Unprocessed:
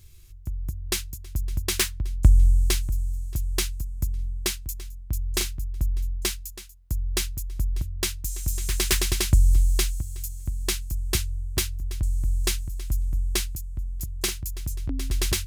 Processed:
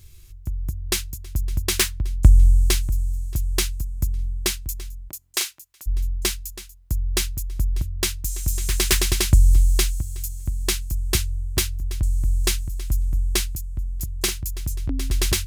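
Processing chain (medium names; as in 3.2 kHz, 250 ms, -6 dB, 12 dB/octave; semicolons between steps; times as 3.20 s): 5.08–5.86 s: high-pass 410 Hz -> 1.2 kHz 12 dB/octave; trim +3.5 dB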